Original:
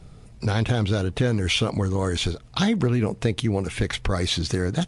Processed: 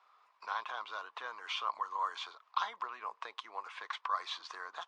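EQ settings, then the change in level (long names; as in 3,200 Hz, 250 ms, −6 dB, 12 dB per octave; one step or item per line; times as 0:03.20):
dynamic equaliser 2,100 Hz, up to −5 dB, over −43 dBFS, Q 1.9
four-pole ladder high-pass 1,000 Hz, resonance 80%
high-frequency loss of the air 180 metres
+2.0 dB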